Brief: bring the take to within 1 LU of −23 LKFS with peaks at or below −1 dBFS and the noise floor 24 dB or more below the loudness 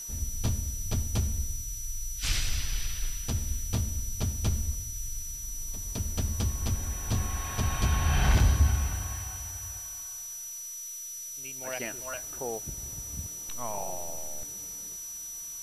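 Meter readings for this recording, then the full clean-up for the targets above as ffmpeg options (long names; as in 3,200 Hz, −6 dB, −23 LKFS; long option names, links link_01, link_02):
interfering tone 5,900 Hz; level of the tone −38 dBFS; background noise floor −40 dBFS; target noise floor −56 dBFS; integrated loudness −32.0 LKFS; sample peak −14.0 dBFS; target loudness −23.0 LKFS
→ -af "bandreject=frequency=5900:width=30"
-af "afftdn=noise_reduction=16:noise_floor=-40"
-af "volume=9dB"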